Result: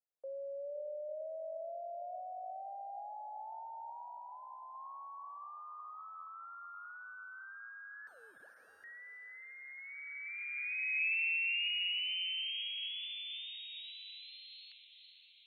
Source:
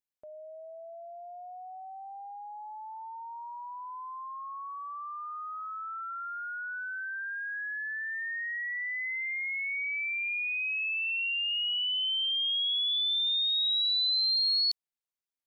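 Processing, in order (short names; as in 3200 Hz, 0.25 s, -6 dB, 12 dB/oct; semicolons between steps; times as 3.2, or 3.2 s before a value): 3.89–4.75 comb 2.3 ms, depth 38%; in parallel at +3 dB: compressor 10:1, threshold -39 dBFS, peak gain reduction 13.5 dB; on the sum: wow and flutter 18 cents; mistuned SSB -73 Hz 480–3100 Hz; 8.07–8.84 wrapped overs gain 33.5 dB; diffused feedback echo 0.49 s, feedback 60%, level -10.5 dB; band-pass sweep 540 Hz -> 2300 Hz, 9.53–11.05; gain -4 dB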